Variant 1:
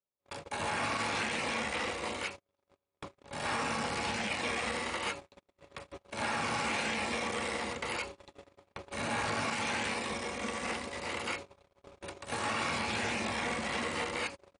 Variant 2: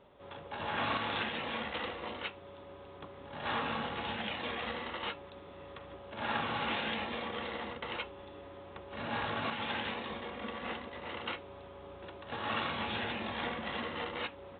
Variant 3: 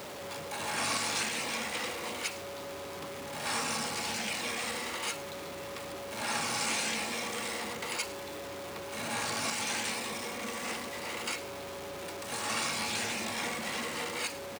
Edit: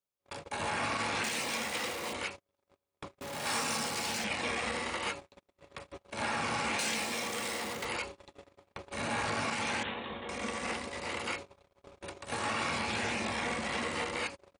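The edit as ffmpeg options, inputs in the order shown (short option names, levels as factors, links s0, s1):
-filter_complex "[2:a]asplit=3[s0][s1][s2];[0:a]asplit=5[s3][s4][s5][s6][s7];[s3]atrim=end=1.242[s8];[s0]atrim=start=1.238:end=2.132[s9];[s4]atrim=start=2.128:end=3.212[s10];[s1]atrim=start=3.208:end=4.242[s11];[s5]atrim=start=4.238:end=6.792[s12];[s2]atrim=start=6.788:end=7.852[s13];[s6]atrim=start=7.848:end=9.832[s14];[1:a]atrim=start=9.828:end=10.292[s15];[s7]atrim=start=10.288[s16];[s8][s9]acrossfade=d=0.004:c1=hsin:c2=hsin[s17];[s17][s10]acrossfade=d=0.004:c1=hsin:c2=hsin[s18];[s18][s11]acrossfade=d=0.004:c1=hsin:c2=hsin[s19];[s19][s12]acrossfade=d=0.004:c1=hsin:c2=hsin[s20];[s20][s13]acrossfade=d=0.004:c1=hsin:c2=hsin[s21];[s21][s14]acrossfade=d=0.004:c1=hsin:c2=hsin[s22];[s22][s15]acrossfade=d=0.004:c1=hsin:c2=hsin[s23];[s23][s16]acrossfade=d=0.004:c1=hsin:c2=hsin"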